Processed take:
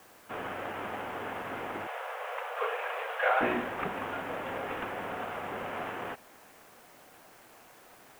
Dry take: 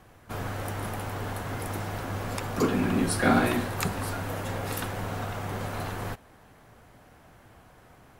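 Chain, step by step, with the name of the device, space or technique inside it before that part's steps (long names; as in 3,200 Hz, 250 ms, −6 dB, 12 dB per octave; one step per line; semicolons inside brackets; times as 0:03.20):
army field radio (band-pass filter 310–3,400 Hz; variable-slope delta modulation 16 kbit/s; white noise bed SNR 26 dB)
0:01.87–0:03.41: Butterworth high-pass 450 Hz 96 dB per octave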